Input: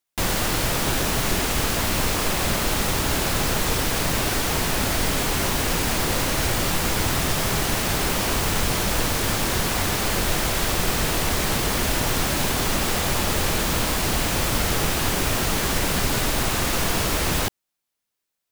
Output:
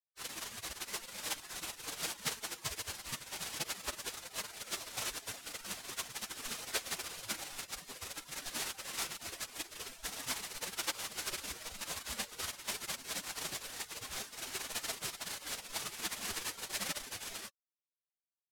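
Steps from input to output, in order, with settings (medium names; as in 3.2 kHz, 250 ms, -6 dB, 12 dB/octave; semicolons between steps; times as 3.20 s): spectral gate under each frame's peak -30 dB weak; tilt EQ -3 dB/octave; decimation joined by straight lines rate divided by 2×; trim +7.5 dB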